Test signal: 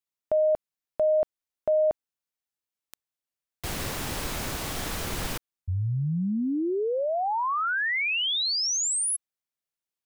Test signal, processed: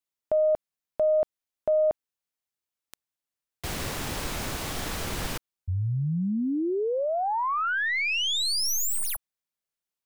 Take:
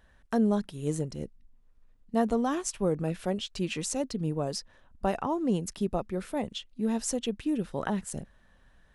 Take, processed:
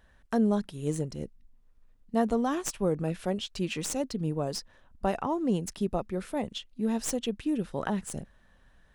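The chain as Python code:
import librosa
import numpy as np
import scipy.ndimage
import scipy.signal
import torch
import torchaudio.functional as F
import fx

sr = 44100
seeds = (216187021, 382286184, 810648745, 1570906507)

y = fx.tracing_dist(x, sr, depth_ms=0.042)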